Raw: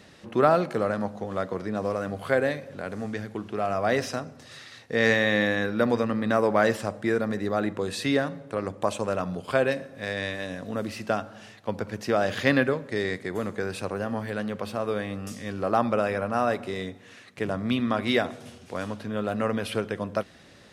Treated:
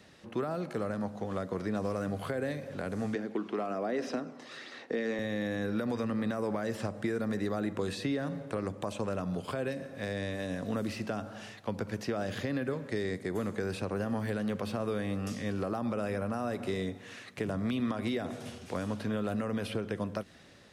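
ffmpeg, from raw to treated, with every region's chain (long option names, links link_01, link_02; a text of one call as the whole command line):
ffmpeg -i in.wav -filter_complex "[0:a]asettb=1/sr,asplit=3[link_01][link_02][link_03];[link_01]atrim=end=3.154[link_04];[link_02]atrim=start=3.15:end=5.19,asetpts=PTS-STARTPTS,afade=type=in:duration=0.004:curve=qsin,afade=type=out:start_time=2.036:duration=0.004:curve=qsin,highpass=frequency=270:width=0.5412,highpass=frequency=270:width=1.3066,aemphasis=mode=reproduction:type=bsi,aphaser=in_gain=1:out_gain=1:delay=1:decay=0.31:speed=1.2:type=sinusoidal[link_05];[link_03]atrim=start=5.186[link_06];[link_04][link_05]acrossfade=duration=0.004:curve1=hsin:curve2=qsin[link_07];[link_07][link_06]acrossfade=duration=0.004:curve1=qsin:curve2=hsin,dynaudnorm=framelen=240:gausssize=9:maxgain=9.5dB,alimiter=limit=-12dB:level=0:latency=1:release=126,acrossover=split=390|890|5700[link_08][link_09][link_10][link_11];[link_08]acompressor=threshold=-25dB:ratio=4[link_12];[link_09]acompressor=threshold=-35dB:ratio=4[link_13];[link_10]acompressor=threshold=-37dB:ratio=4[link_14];[link_11]acompressor=threshold=-49dB:ratio=4[link_15];[link_12][link_13][link_14][link_15]amix=inputs=4:normalize=0,volume=-5.5dB" out.wav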